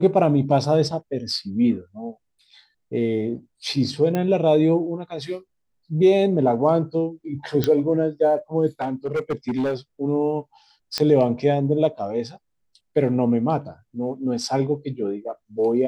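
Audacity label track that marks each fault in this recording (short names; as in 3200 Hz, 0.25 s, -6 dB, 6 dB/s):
4.150000	4.150000	pop -12 dBFS
7.640000	7.640000	pop -8 dBFS
8.810000	9.750000	clipped -19.5 dBFS
10.980000	10.980000	pop -9 dBFS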